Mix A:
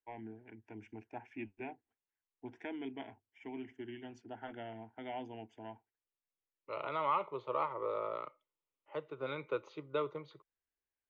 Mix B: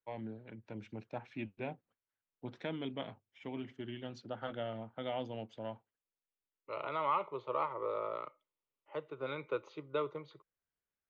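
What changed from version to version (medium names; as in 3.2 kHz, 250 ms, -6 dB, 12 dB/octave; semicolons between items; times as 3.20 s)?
first voice: remove static phaser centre 810 Hz, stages 8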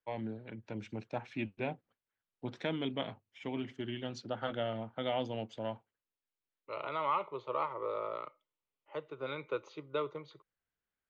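first voice +4.0 dB; master: add treble shelf 5.6 kHz +9.5 dB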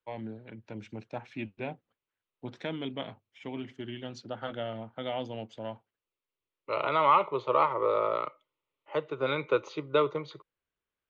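second voice +10.0 dB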